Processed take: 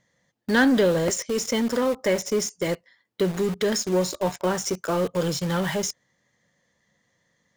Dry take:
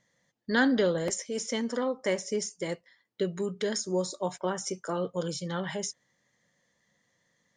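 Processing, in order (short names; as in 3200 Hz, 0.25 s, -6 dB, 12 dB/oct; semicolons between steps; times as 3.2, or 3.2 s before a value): high shelf 3800 Hz -3 dB; in parallel at -9 dB: companded quantiser 2-bit; on the sum: bell 67 Hz +5 dB 1.2 oct; gain +3.5 dB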